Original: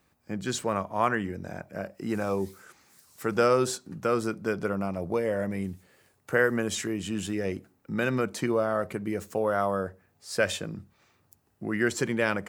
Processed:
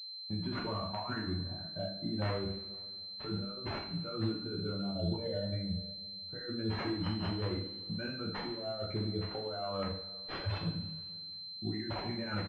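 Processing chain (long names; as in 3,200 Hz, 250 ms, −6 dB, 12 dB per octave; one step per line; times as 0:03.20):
spectral dynamics exaggerated over time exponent 2
noise gate −56 dBFS, range −16 dB
compressor whose output falls as the input rises −41 dBFS, ratio −1
wrap-around overflow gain 26.5 dB
slap from a distant wall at 89 metres, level −27 dB
coupled-rooms reverb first 0.58 s, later 2.3 s, from −19 dB, DRR −4.5 dB
switching amplifier with a slow clock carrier 4,100 Hz
level −1.5 dB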